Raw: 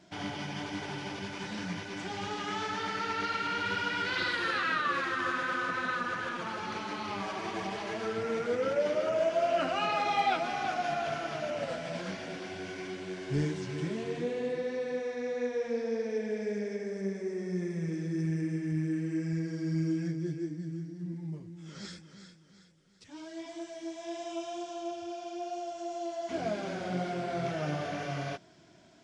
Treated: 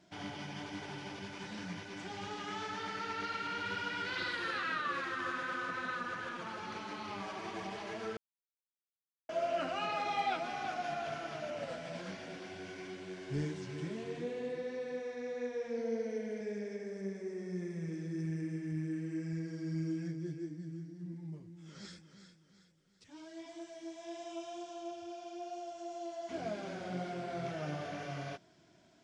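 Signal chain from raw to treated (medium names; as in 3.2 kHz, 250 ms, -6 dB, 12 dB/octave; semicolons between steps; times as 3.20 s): 8.17–9.29 s: mute; 15.77–16.41 s: rippled EQ curve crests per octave 1.9, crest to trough 9 dB; trim -6 dB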